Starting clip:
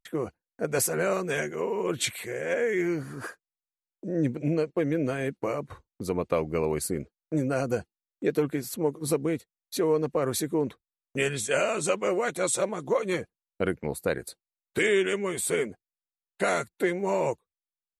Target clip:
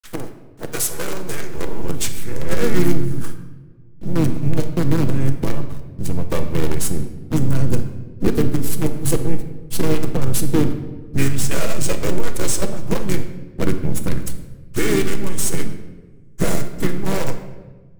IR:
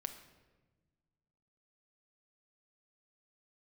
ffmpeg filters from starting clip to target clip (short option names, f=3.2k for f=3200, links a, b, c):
-filter_complex "[0:a]aemphasis=mode=production:type=50fm,aphaser=in_gain=1:out_gain=1:delay=2.2:decay=0.27:speed=0.37:type=sinusoidal,asplit=2[a][b];[b]acompressor=threshold=-33dB:ratio=8,volume=1.5dB[c];[a][c]amix=inputs=2:normalize=0,acrusher=bits=4:dc=4:mix=0:aa=0.000001,acrossover=split=290[d][e];[d]dynaudnorm=f=630:g=5:m=16dB[f];[e]asoftclip=type=hard:threshold=-11.5dB[g];[f][g]amix=inputs=2:normalize=0,asplit=3[h][i][j];[i]asetrate=29433,aresample=44100,atempo=1.49831,volume=-9dB[k];[j]asetrate=35002,aresample=44100,atempo=1.25992,volume=-6dB[l];[h][k][l]amix=inputs=3:normalize=0[m];[1:a]atrim=start_sample=2205[n];[m][n]afir=irnorm=-1:irlink=0,volume=-3.5dB"